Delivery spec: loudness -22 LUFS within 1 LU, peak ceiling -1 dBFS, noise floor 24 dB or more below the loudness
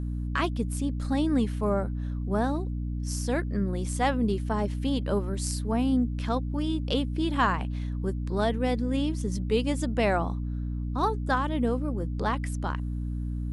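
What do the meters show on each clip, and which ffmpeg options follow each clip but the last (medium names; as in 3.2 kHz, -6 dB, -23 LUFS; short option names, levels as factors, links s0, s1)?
hum 60 Hz; highest harmonic 300 Hz; hum level -28 dBFS; loudness -28.5 LUFS; peak level -11.5 dBFS; loudness target -22.0 LUFS
-> -af "bandreject=f=60:t=h:w=4,bandreject=f=120:t=h:w=4,bandreject=f=180:t=h:w=4,bandreject=f=240:t=h:w=4,bandreject=f=300:t=h:w=4"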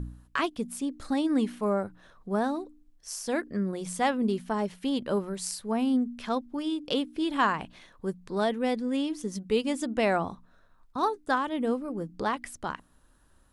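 hum not found; loudness -30.0 LUFS; peak level -12.5 dBFS; loudness target -22.0 LUFS
-> -af "volume=2.51"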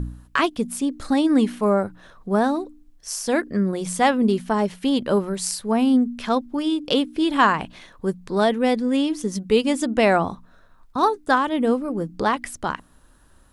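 loudness -22.0 LUFS; peak level -5.0 dBFS; noise floor -54 dBFS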